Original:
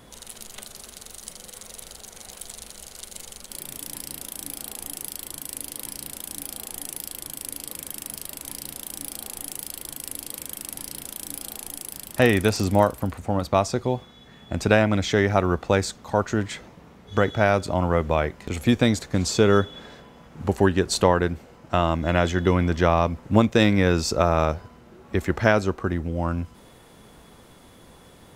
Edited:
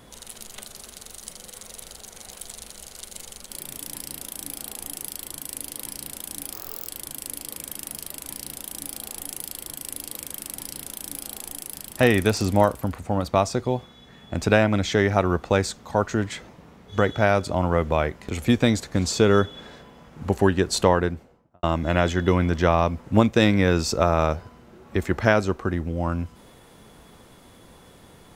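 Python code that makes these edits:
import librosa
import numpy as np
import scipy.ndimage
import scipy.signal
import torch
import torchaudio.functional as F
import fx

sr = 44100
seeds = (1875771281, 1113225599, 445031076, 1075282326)

y = fx.studio_fade_out(x, sr, start_s=21.11, length_s=0.71)
y = fx.edit(y, sr, fx.speed_span(start_s=6.53, length_s=0.54, speed=1.54), tone=tone)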